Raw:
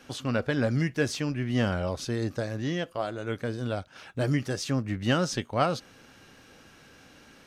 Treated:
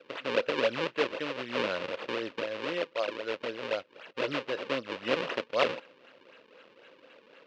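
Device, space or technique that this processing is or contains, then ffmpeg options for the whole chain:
circuit-bent sampling toy: -af "acrusher=samples=38:mix=1:aa=0.000001:lfo=1:lforange=60.8:lforate=3.9,highpass=460,equalizer=frequency=520:width_type=q:width=4:gain=8,equalizer=frequency=770:width_type=q:width=4:gain=-8,equalizer=frequency=2700:width_type=q:width=4:gain=7,lowpass=frequency=4400:width=0.5412,lowpass=frequency=4400:width=1.3066"

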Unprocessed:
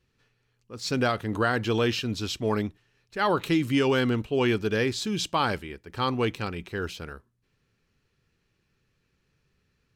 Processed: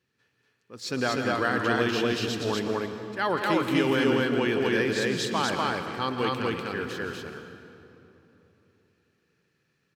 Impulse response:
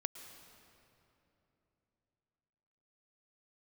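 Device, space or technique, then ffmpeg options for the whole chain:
stadium PA: -filter_complex "[0:a]highpass=140,equalizer=frequency=1700:width_type=o:width=0.22:gain=5.5,aecho=1:1:166.2|244.9:0.316|0.891[link_01];[1:a]atrim=start_sample=2205[link_02];[link_01][link_02]afir=irnorm=-1:irlink=0,volume=-1.5dB"

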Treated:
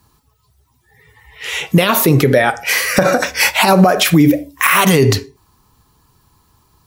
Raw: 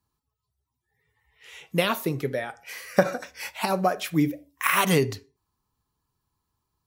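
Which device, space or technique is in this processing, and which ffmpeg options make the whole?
loud club master: -af "acompressor=threshold=-24dB:ratio=3,asoftclip=type=hard:threshold=-14.5dB,alimiter=level_in=24.5dB:limit=-1dB:release=50:level=0:latency=1,volume=-1dB"

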